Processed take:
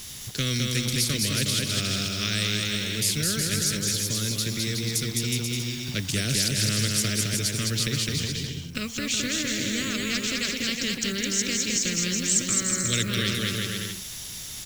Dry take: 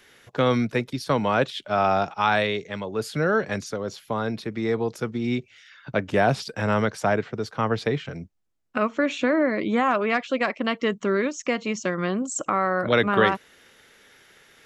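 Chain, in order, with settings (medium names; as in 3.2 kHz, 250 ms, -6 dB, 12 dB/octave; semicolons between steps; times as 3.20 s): Chebyshev band-stop 120–5700 Hz, order 2; bit crusher 11-bit; bouncing-ball echo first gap 210 ms, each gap 0.75×, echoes 5; spectrum-flattening compressor 2:1; trim +7 dB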